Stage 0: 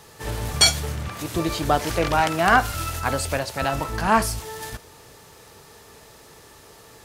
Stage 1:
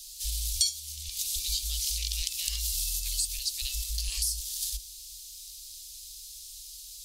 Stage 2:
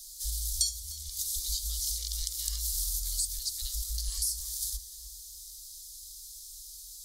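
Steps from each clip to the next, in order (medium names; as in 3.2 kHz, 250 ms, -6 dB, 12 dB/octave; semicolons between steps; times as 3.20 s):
inverse Chebyshev band-stop 110–1600 Hz, stop band 50 dB; compression 4:1, threshold -36 dBFS, peak gain reduction 19 dB; trim +8.5 dB
static phaser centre 700 Hz, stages 6; tape echo 304 ms, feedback 64%, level -5.5 dB, low-pass 1.3 kHz; on a send at -16 dB: reverberation RT60 3.6 s, pre-delay 3 ms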